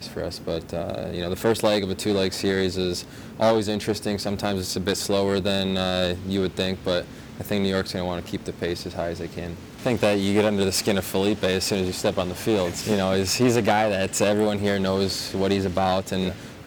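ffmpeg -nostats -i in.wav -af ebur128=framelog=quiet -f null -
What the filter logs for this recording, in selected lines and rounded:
Integrated loudness:
  I:         -24.0 LUFS
  Threshold: -34.1 LUFS
Loudness range:
  LRA:         4.3 LU
  Threshold: -44.0 LUFS
  LRA low:   -26.5 LUFS
  LRA high:  -22.2 LUFS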